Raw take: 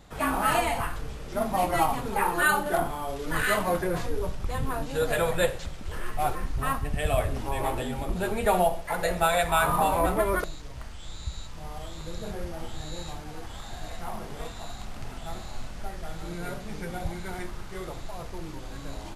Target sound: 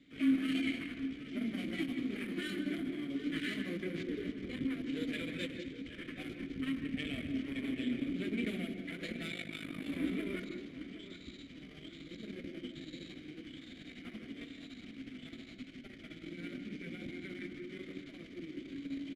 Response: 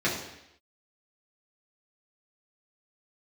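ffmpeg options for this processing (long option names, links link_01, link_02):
-filter_complex "[0:a]acrossover=split=410|3000[link_01][link_02][link_03];[link_02]acompressor=threshold=-31dB:ratio=6[link_04];[link_01][link_04][link_03]amix=inputs=3:normalize=0,aeval=exprs='0.224*(cos(1*acos(clip(val(0)/0.224,-1,1)))-cos(1*PI/2))+0.0282*(cos(8*acos(clip(val(0)/0.224,-1,1)))-cos(8*PI/2))':channel_layout=same,asplit=3[link_05][link_06][link_07];[link_05]bandpass=frequency=270:width_type=q:width=8,volume=0dB[link_08];[link_06]bandpass=frequency=2290:width_type=q:width=8,volume=-6dB[link_09];[link_07]bandpass=frequency=3010:width_type=q:width=8,volume=-9dB[link_10];[link_08][link_09][link_10]amix=inputs=3:normalize=0,asplit=2[link_11][link_12];[link_12]adelay=769,lowpass=frequency=2600:poles=1,volume=-12dB,asplit=2[link_13][link_14];[link_14]adelay=769,lowpass=frequency=2600:poles=1,volume=0.48,asplit=2[link_15][link_16];[link_16]adelay=769,lowpass=frequency=2600:poles=1,volume=0.48,asplit=2[link_17][link_18];[link_18]adelay=769,lowpass=frequency=2600:poles=1,volume=0.48,asplit=2[link_19][link_20];[link_20]adelay=769,lowpass=frequency=2600:poles=1,volume=0.48[link_21];[link_11][link_13][link_15][link_17][link_19][link_21]amix=inputs=6:normalize=0,asplit=2[link_22][link_23];[1:a]atrim=start_sample=2205,adelay=147[link_24];[link_23][link_24]afir=irnorm=-1:irlink=0,volume=-21dB[link_25];[link_22][link_25]amix=inputs=2:normalize=0,asplit=3[link_26][link_27][link_28];[link_26]afade=type=out:start_time=9.3:duration=0.02[link_29];[link_27]tremolo=f=51:d=0.857,afade=type=in:start_time=9.3:duration=0.02,afade=type=out:start_time=9.87:duration=0.02[link_30];[link_28]afade=type=in:start_time=9.87:duration=0.02[link_31];[link_29][link_30][link_31]amix=inputs=3:normalize=0,volume=5dB"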